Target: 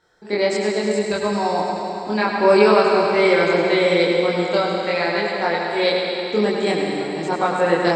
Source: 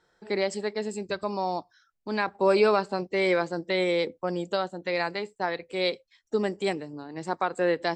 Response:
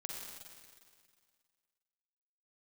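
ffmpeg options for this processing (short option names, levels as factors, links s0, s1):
-filter_complex "[0:a]asplit=2[s0][s1];[1:a]atrim=start_sample=2205,asetrate=25578,aresample=44100,adelay=24[s2];[s1][s2]afir=irnorm=-1:irlink=0,volume=1.33[s3];[s0][s3]amix=inputs=2:normalize=0,volume=1.41"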